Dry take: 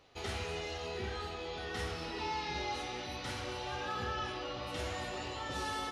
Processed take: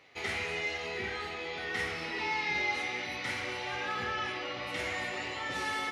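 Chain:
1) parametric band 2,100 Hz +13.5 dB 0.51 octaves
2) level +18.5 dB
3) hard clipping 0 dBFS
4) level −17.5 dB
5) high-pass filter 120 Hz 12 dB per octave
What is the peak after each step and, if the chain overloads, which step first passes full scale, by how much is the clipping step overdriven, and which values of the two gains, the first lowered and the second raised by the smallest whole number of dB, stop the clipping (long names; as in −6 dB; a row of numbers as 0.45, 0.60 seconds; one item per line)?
−22.0, −3.5, −3.5, −21.0, −20.5 dBFS
no step passes full scale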